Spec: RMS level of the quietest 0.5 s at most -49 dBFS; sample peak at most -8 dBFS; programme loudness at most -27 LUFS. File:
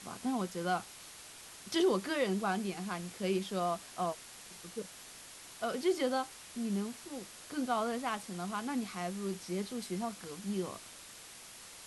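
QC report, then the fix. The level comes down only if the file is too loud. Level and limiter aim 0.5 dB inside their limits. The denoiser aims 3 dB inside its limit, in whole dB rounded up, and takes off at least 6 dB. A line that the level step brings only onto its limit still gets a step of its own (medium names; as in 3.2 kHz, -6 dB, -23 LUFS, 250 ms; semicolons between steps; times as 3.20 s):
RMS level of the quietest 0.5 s -52 dBFS: pass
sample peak -20.0 dBFS: pass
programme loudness -36.0 LUFS: pass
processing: none needed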